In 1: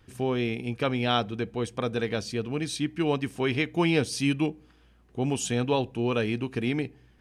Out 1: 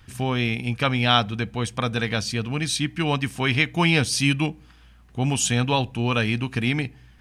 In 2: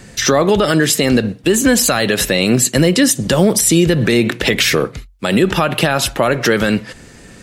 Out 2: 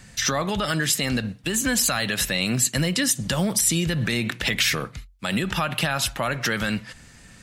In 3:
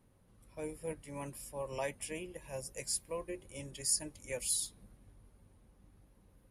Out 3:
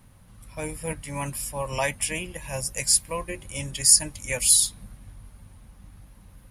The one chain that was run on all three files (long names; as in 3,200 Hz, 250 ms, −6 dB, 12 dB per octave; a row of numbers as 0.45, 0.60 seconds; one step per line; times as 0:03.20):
parametric band 400 Hz −12 dB 1.3 octaves
loudness normalisation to −23 LKFS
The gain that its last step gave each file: +9.0, −6.5, +16.0 decibels